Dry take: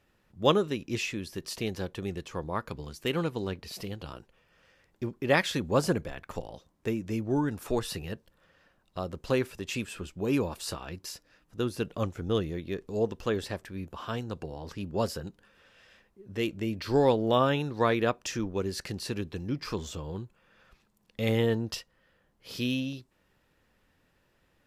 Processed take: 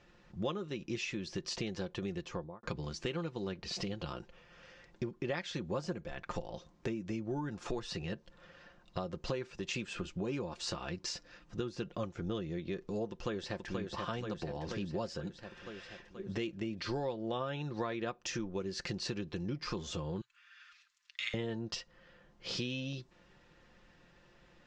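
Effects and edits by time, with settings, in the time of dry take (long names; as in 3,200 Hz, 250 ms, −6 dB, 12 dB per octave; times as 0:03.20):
0:02.18–0:02.63: fade out and dull
0:13.11–0:13.75: delay throw 480 ms, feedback 60%, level −6.5 dB
0:20.21–0:21.34: inverse Chebyshev high-pass filter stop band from 710 Hz
whole clip: Butterworth low-pass 6,900 Hz 36 dB per octave; comb filter 5.7 ms, depth 45%; downward compressor 6 to 1, threshold −41 dBFS; level +5.5 dB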